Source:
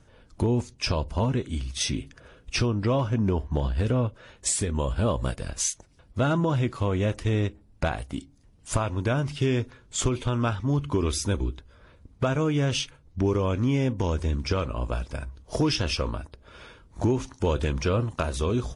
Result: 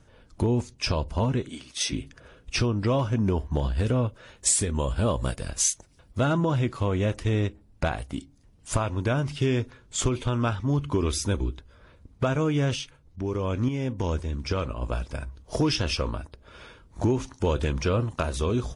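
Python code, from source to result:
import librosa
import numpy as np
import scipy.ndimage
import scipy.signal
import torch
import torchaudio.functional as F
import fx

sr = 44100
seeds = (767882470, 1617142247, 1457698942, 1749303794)

y = fx.highpass(x, sr, hz=300.0, slope=12, at=(1.49, 1.92))
y = fx.high_shelf(y, sr, hz=6400.0, db=6.5, at=(2.75, 6.25))
y = fx.tremolo_shape(y, sr, shape='saw_up', hz=1.9, depth_pct=fx.line((12.74, 70.0), (14.81, 40.0)), at=(12.74, 14.81), fade=0.02)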